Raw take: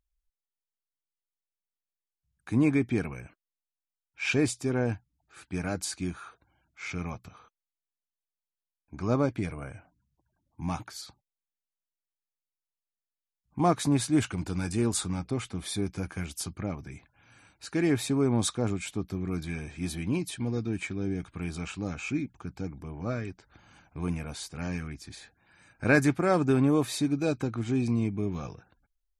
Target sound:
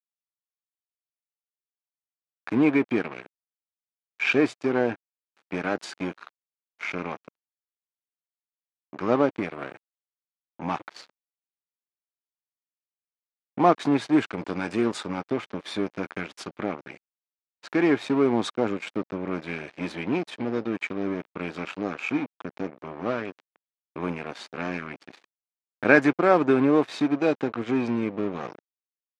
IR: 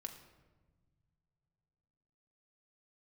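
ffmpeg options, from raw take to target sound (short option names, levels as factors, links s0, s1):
-filter_complex "[0:a]asplit=2[s0][s1];[s1]acompressor=threshold=0.0178:ratio=6,volume=1.26[s2];[s0][s2]amix=inputs=2:normalize=0,aeval=exprs='sgn(val(0))*max(abs(val(0))-0.0168,0)':c=same,highpass=290,lowpass=2900,volume=2"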